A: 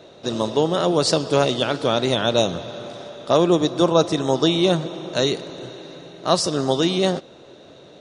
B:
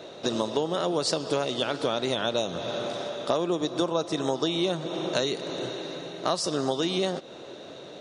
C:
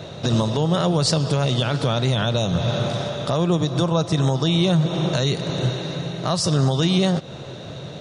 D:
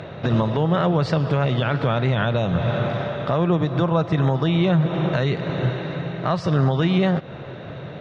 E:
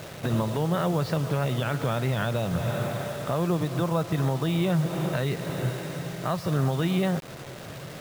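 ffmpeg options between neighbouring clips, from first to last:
-af "lowshelf=f=120:g=-11.5,acompressor=threshold=0.0447:ratio=6,volume=1.5"
-af "lowshelf=f=200:t=q:w=1.5:g=14,alimiter=limit=0.15:level=0:latency=1:release=30,volume=2.11"
-af "lowpass=f=2000:t=q:w=1.6,acompressor=mode=upward:threshold=0.01:ratio=2.5"
-af "acrusher=bits=5:mix=0:aa=0.000001,volume=0.501"

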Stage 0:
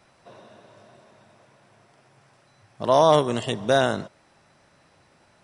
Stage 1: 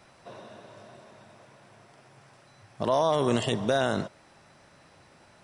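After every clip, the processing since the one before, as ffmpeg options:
-af "alimiter=limit=0.15:level=0:latency=1:release=32,volume=1.33"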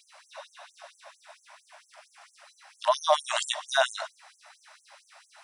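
-af "afftfilt=real='re*gte(b*sr/1024,540*pow(6100/540,0.5+0.5*sin(2*PI*4.4*pts/sr)))':imag='im*gte(b*sr/1024,540*pow(6100/540,0.5+0.5*sin(2*PI*4.4*pts/sr)))':win_size=1024:overlap=0.75,volume=2.24"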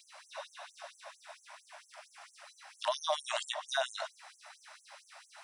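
-filter_complex "[0:a]acrossover=split=630|2000|4700[s0][s1][s2][s3];[s0]acompressor=threshold=0.02:ratio=4[s4];[s1]acompressor=threshold=0.01:ratio=4[s5];[s2]acompressor=threshold=0.0112:ratio=4[s6];[s3]acompressor=threshold=0.00398:ratio=4[s7];[s4][s5][s6][s7]amix=inputs=4:normalize=0"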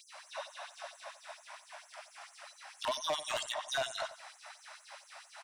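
-filter_complex "[0:a]asoftclip=type=tanh:threshold=0.0299,asplit=2[s0][s1];[s1]adelay=90,lowpass=f=3600:p=1,volume=0.211,asplit=2[s2][s3];[s3]adelay=90,lowpass=f=3600:p=1,volume=0.28,asplit=2[s4][s5];[s5]adelay=90,lowpass=f=3600:p=1,volume=0.28[s6];[s0][s2][s4][s6]amix=inputs=4:normalize=0,volume=1.33"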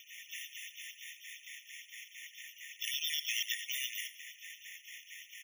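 -af "acrusher=samples=5:mix=1:aa=0.000001,asoftclip=type=tanh:threshold=0.0316,afftfilt=real='re*eq(mod(floor(b*sr/1024/1800),2),1)':imag='im*eq(mod(floor(b*sr/1024/1800),2),1)':win_size=1024:overlap=0.75,volume=2.37"

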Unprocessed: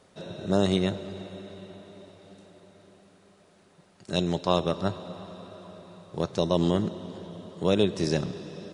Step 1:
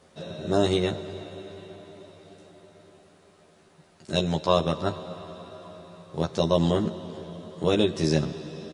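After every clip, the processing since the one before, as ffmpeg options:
-filter_complex "[0:a]asplit=2[s0][s1];[s1]adelay=13,volume=0.75[s2];[s0][s2]amix=inputs=2:normalize=0"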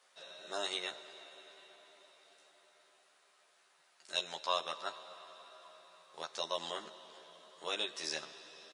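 -af "highpass=1100,volume=0.562"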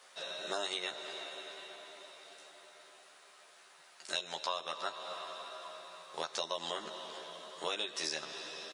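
-af "acompressor=threshold=0.00708:ratio=6,volume=2.99"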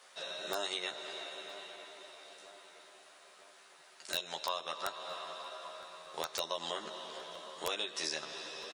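-filter_complex "[0:a]aeval=exprs='(mod(11.2*val(0)+1,2)-1)/11.2':c=same,asplit=2[s0][s1];[s1]adelay=963,lowpass=f=2400:p=1,volume=0.158,asplit=2[s2][s3];[s3]adelay=963,lowpass=f=2400:p=1,volume=0.54,asplit=2[s4][s5];[s5]adelay=963,lowpass=f=2400:p=1,volume=0.54,asplit=2[s6][s7];[s7]adelay=963,lowpass=f=2400:p=1,volume=0.54,asplit=2[s8][s9];[s9]adelay=963,lowpass=f=2400:p=1,volume=0.54[s10];[s0][s2][s4][s6][s8][s10]amix=inputs=6:normalize=0"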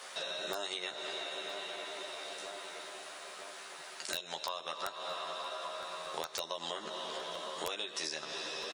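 -af "acompressor=threshold=0.00282:ratio=3,volume=3.76"

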